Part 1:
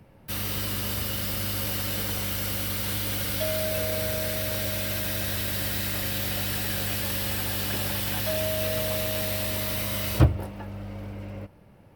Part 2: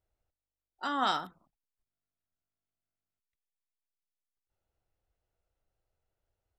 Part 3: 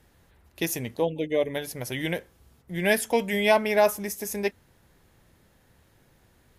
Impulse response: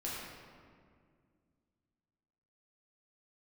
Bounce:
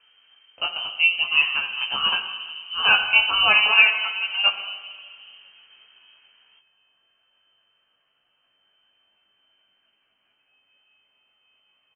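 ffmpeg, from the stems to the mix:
-filter_complex "[0:a]acompressor=threshold=-34dB:ratio=6,adelay=1700,volume=-18.5dB,asplit=2[a][b];[b]volume=-8dB[c];[1:a]asplit=2[d][e];[e]afreqshift=2.4[f];[d][f]amix=inputs=2:normalize=1,adelay=350,volume=-7.5dB[g];[2:a]dynaudnorm=f=310:g=7:m=4dB,volume=2dB,asplit=3[h][i][j];[i]volume=-6dB[k];[j]apad=whole_len=602189[l];[a][l]sidechaingate=range=-33dB:threshold=-55dB:ratio=16:detection=peak[m];[3:a]atrim=start_sample=2205[n];[k][n]afir=irnorm=-1:irlink=0[o];[c]aecho=0:1:429|858|1287|1716|2145|2574|3003:1|0.49|0.24|0.118|0.0576|0.0282|0.0138[p];[m][g][h][o][p]amix=inputs=5:normalize=0,flanger=delay=16:depth=5.8:speed=0.49,lowpass=f=2.7k:t=q:w=0.5098,lowpass=f=2.7k:t=q:w=0.6013,lowpass=f=2.7k:t=q:w=0.9,lowpass=f=2.7k:t=q:w=2.563,afreqshift=-3200"

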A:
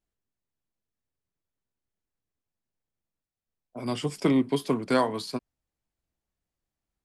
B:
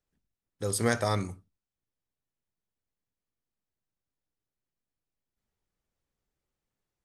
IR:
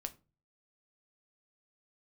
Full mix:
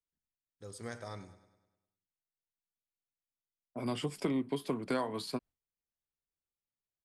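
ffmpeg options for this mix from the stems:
-filter_complex "[0:a]agate=range=-33dB:threshold=-44dB:ratio=3:detection=peak,equalizer=f=5.9k:t=o:w=0.62:g=-5.5,volume=-2dB[a];[1:a]lowpass=8.5k,volume=-16.5dB,asplit=2[b][c];[c]volume=-14.5dB,aecho=0:1:101|202|303|404|505|606|707|808:1|0.52|0.27|0.141|0.0731|0.038|0.0198|0.0103[d];[a][b][d]amix=inputs=3:normalize=0,acompressor=threshold=-32dB:ratio=3"

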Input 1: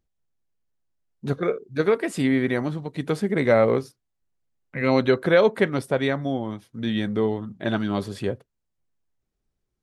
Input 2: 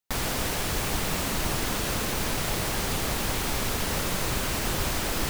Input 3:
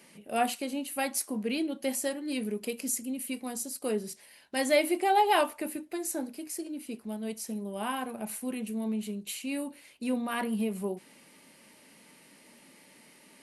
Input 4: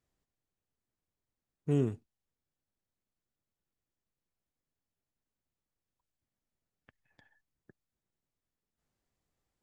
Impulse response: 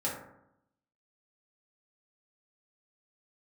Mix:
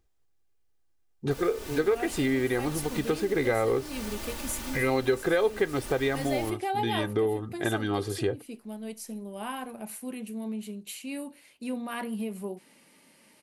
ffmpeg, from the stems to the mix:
-filter_complex "[0:a]aecho=1:1:2.5:0.65,volume=2.5dB[a];[1:a]aecho=1:1:3.4:0.65,adelay=1200,volume=-11dB[b];[2:a]adelay=1600,volume=-2.5dB[c];[3:a]highpass=260,volume=-0.5dB[d];[a][b][c][d]amix=inputs=4:normalize=0,acompressor=threshold=-27dB:ratio=2.5"

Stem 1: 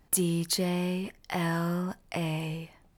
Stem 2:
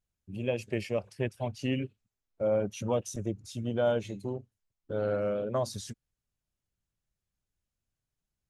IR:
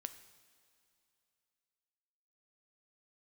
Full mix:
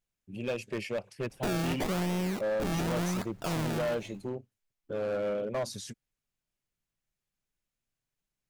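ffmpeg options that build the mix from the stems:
-filter_complex "[0:a]acrusher=samples=30:mix=1:aa=0.000001:lfo=1:lforange=30:lforate=0.89,adelay=1300,volume=1.5dB,asplit=2[a][b];[b]volume=-11dB[c];[1:a]equalizer=f=2.3k:t=o:w=0.78:g=3.5,volume=0dB[d];[2:a]atrim=start_sample=2205[e];[c][e]afir=irnorm=-1:irlink=0[f];[a][d][f]amix=inputs=3:normalize=0,equalizer=f=70:t=o:w=1:g=-13.5,asoftclip=type=hard:threshold=-27.5dB"

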